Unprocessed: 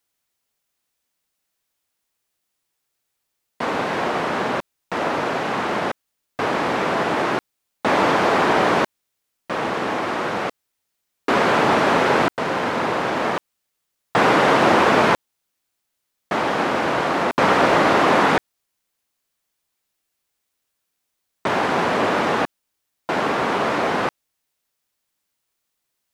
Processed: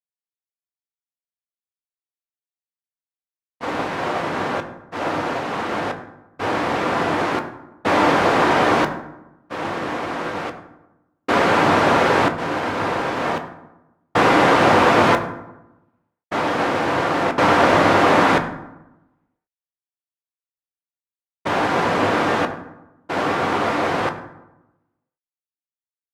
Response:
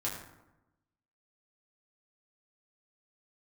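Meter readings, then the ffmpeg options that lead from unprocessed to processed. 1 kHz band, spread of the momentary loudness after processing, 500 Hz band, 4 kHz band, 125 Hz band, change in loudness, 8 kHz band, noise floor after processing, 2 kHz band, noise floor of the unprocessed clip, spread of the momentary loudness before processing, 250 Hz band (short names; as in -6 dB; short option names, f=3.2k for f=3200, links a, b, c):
+1.0 dB, 15 LU, +0.5 dB, 0.0 dB, +3.0 dB, +1.0 dB, 0.0 dB, under -85 dBFS, +0.5 dB, -77 dBFS, 11 LU, +1.5 dB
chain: -filter_complex "[0:a]agate=range=-33dB:threshold=-19dB:ratio=3:detection=peak,asplit=2[a][b];[1:a]atrim=start_sample=2205,lowshelf=f=78:g=9.5[c];[b][c]afir=irnorm=-1:irlink=0,volume=-5dB[d];[a][d]amix=inputs=2:normalize=0,volume=-3dB"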